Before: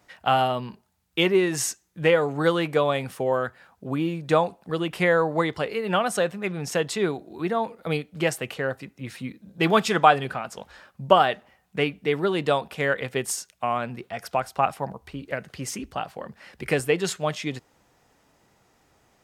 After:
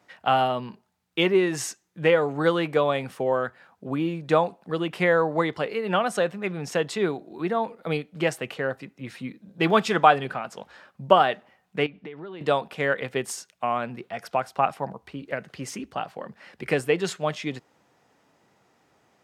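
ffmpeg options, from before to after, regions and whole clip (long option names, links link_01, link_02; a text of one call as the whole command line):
ffmpeg -i in.wav -filter_complex "[0:a]asettb=1/sr,asplit=3[link_01][link_02][link_03];[link_01]atrim=end=11.864[link_04];[link_02]atrim=start=11.86:end=12.41,asetpts=PTS-STARTPTS,afade=type=in:duration=0.004:curve=qsin,afade=type=out:start_time=0.546:duration=0.004:curve=qsin,lowpass=3800,acompressor=threshold=-34dB:ratio=16:attack=3.2:release=140:knee=1:detection=peak[link_05];[link_03]atrim=start=12.406[link_06];[link_04][link_05]acrossfade=duration=0.004:curve1=hsin:curve2=qsin[link_07];[link_07][link_06]acrossfade=duration=0.004:curve1=qsin:curve2=hsin,highpass=130,highshelf=frequency=6400:gain=-9" out.wav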